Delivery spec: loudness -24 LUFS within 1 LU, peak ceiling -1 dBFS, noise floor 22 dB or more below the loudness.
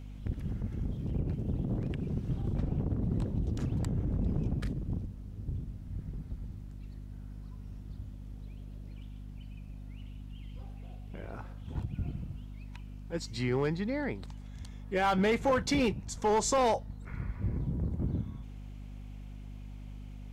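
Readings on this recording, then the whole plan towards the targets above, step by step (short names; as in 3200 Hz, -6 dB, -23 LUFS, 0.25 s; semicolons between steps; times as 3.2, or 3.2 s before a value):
clipped 0.5%; flat tops at -21.5 dBFS; hum 50 Hz; harmonics up to 250 Hz; hum level -41 dBFS; loudness -33.5 LUFS; peak -21.5 dBFS; loudness target -24.0 LUFS
-> clip repair -21.5 dBFS; de-hum 50 Hz, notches 5; gain +9.5 dB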